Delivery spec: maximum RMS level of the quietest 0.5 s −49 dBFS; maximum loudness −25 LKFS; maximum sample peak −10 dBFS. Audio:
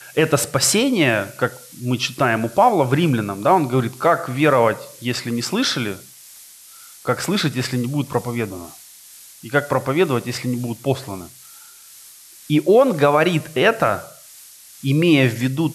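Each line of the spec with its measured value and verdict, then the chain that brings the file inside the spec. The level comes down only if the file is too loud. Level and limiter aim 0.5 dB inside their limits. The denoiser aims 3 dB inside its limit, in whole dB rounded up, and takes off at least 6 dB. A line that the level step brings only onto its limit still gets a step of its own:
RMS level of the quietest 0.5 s −44 dBFS: out of spec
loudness −19.0 LKFS: out of spec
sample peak −4.0 dBFS: out of spec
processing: level −6.5 dB

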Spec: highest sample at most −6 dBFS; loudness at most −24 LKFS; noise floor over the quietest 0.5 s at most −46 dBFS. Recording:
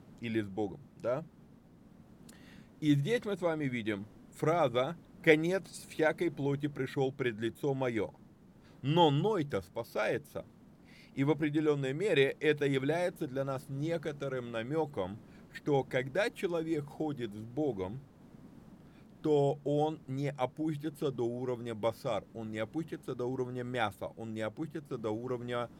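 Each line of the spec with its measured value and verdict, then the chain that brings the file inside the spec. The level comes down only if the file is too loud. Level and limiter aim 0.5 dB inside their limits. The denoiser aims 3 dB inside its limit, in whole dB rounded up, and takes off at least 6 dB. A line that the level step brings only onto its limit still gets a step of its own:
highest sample −10.0 dBFS: in spec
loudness −34.0 LKFS: in spec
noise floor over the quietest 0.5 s −58 dBFS: in spec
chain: no processing needed

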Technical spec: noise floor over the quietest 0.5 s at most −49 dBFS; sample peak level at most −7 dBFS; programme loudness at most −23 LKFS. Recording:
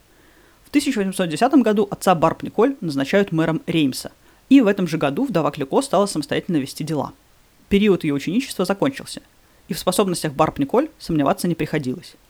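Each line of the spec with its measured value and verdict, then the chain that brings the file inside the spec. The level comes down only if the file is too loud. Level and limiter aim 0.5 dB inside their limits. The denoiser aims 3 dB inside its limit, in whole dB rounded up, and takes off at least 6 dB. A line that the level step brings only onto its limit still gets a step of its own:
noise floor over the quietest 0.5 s −54 dBFS: in spec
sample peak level −3.0 dBFS: out of spec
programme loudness −20.0 LKFS: out of spec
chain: level −3.5 dB
brickwall limiter −7.5 dBFS

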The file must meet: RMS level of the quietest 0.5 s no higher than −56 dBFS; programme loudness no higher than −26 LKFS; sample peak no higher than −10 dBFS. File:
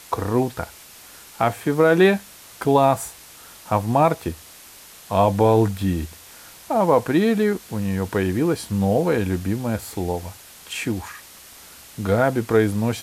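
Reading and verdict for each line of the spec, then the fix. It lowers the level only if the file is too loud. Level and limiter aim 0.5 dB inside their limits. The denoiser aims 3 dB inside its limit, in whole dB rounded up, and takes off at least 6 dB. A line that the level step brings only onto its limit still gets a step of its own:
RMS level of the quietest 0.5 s −45 dBFS: out of spec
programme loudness −21.0 LKFS: out of spec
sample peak −5.0 dBFS: out of spec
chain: broadband denoise 9 dB, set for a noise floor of −45 dBFS
level −5.5 dB

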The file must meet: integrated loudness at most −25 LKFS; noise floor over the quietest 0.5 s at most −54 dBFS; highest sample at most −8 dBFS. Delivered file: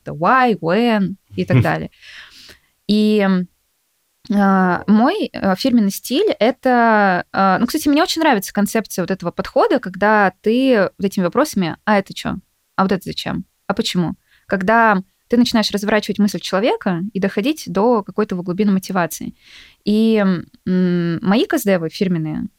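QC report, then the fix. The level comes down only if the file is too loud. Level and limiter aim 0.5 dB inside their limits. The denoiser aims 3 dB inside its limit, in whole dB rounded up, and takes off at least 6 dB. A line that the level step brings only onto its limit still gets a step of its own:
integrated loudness −17.0 LKFS: out of spec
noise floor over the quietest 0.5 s −66 dBFS: in spec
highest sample −2.5 dBFS: out of spec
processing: level −8.5 dB

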